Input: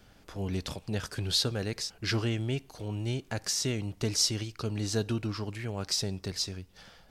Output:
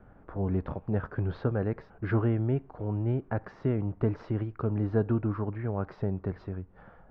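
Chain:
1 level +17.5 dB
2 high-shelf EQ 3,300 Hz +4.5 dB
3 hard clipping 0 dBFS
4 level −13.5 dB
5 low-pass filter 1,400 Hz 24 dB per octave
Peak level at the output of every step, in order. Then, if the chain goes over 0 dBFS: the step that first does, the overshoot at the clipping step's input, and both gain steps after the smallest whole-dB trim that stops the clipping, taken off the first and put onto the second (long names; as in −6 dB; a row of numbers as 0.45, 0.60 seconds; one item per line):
+5.5, +8.5, 0.0, −13.5, −15.0 dBFS
step 1, 8.5 dB
step 1 +8.5 dB, step 4 −4.5 dB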